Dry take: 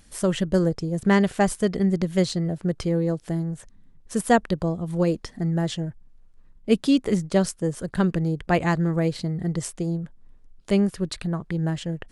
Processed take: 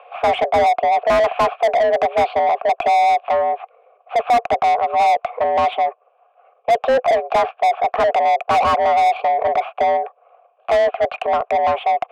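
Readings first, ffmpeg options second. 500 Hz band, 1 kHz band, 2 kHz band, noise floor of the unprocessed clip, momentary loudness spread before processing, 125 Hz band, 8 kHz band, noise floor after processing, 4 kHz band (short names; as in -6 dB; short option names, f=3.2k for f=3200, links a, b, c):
+9.0 dB, +18.0 dB, +7.5 dB, -53 dBFS, 9 LU, under -15 dB, n/a, -58 dBFS, +4.5 dB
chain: -filter_complex "[0:a]highpass=f=240:t=q:w=0.5412,highpass=f=240:t=q:w=1.307,lowpass=f=2.9k:t=q:w=0.5176,lowpass=f=2.9k:t=q:w=0.7071,lowpass=f=2.9k:t=q:w=1.932,afreqshift=250,asplit=3[a][b][c];[a]bandpass=f=730:t=q:w=8,volume=0dB[d];[b]bandpass=f=1.09k:t=q:w=8,volume=-6dB[e];[c]bandpass=f=2.44k:t=q:w=8,volume=-9dB[f];[d][e][f]amix=inputs=3:normalize=0,asplit=2[g][h];[h]highpass=f=720:p=1,volume=34dB,asoftclip=type=tanh:threshold=-13dB[i];[g][i]amix=inputs=2:normalize=0,lowpass=f=1.4k:p=1,volume=-6dB,volume=6.5dB"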